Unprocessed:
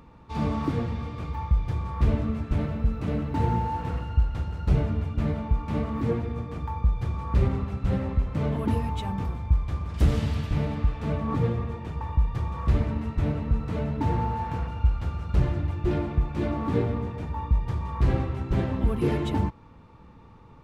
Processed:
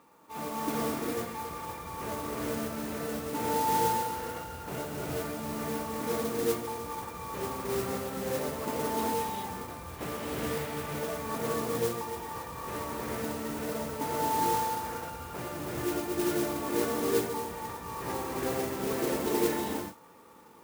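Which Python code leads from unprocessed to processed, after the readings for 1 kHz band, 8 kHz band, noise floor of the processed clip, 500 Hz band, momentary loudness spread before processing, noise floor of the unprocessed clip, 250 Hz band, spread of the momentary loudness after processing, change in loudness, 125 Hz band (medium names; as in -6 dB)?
+2.0 dB, no reading, -45 dBFS, +1.5 dB, 6 LU, -49 dBFS, -5.0 dB, 10 LU, -5.0 dB, -17.0 dB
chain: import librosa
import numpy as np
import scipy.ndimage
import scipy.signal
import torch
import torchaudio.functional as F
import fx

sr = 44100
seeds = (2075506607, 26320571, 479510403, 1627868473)

y = fx.bandpass_edges(x, sr, low_hz=360.0, high_hz=2700.0)
y = fx.rev_gated(y, sr, seeds[0], gate_ms=450, shape='rising', drr_db=-5.0)
y = fx.mod_noise(y, sr, seeds[1], snr_db=10)
y = y * 10.0 ** (-4.0 / 20.0)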